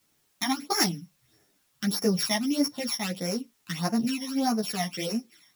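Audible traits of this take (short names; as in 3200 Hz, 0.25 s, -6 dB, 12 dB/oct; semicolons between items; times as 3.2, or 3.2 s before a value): a buzz of ramps at a fixed pitch in blocks of 8 samples; phasing stages 12, 1.6 Hz, lowest notch 440–3500 Hz; a quantiser's noise floor 12-bit, dither triangular; a shimmering, thickened sound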